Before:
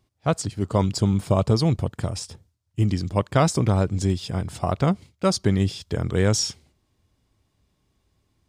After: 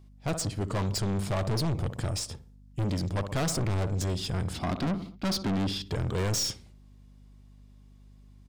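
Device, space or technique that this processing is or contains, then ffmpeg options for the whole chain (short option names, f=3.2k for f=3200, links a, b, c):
valve amplifier with mains hum: -filter_complex "[0:a]asettb=1/sr,asplit=3[a][b][c];[a]atrim=end=4.534[d];[b]atrim=start=4.53:end=5.87,asetpts=PTS-STARTPTS,afade=t=in:d=0.004:c=qsin,afade=t=out:st=1.336:d=0.004:c=qsin,equalizer=f=125:t=o:w=1:g=-8,equalizer=f=250:t=o:w=1:g=11,equalizer=f=500:t=o:w=1:g=-6,equalizer=f=4k:t=o:w=1:g=6,equalizer=f=8k:t=o:w=1:g=-10[e];[c]atrim=start=5.866[f];[d][e]acrossfade=d=0.004:c1=hsin:c2=qsin[g];[g][f]acrossfade=d=0.004:c1=qsin:c2=hsin,asplit=2[h][i];[i]adelay=61,lowpass=f=2.3k:p=1,volume=-17.5dB,asplit=2[j][k];[k]adelay=61,lowpass=f=2.3k:p=1,volume=0.5,asplit=2[l][m];[m]adelay=61,lowpass=f=2.3k:p=1,volume=0.5,asplit=2[n][o];[o]adelay=61,lowpass=f=2.3k:p=1,volume=0.5[p];[h][j][l][n][p]amix=inputs=5:normalize=0,aeval=exprs='(tanh(25.1*val(0)+0.25)-tanh(0.25))/25.1':c=same,aeval=exprs='val(0)+0.002*(sin(2*PI*50*n/s)+sin(2*PI*2*50*n/s)/2+sin(2*PI*3*50*n/s)/3+sin(2*PI*4*50*n/s)/4+sin(2*PI*5*50*n/s)/5)':c=same,volume=2dB"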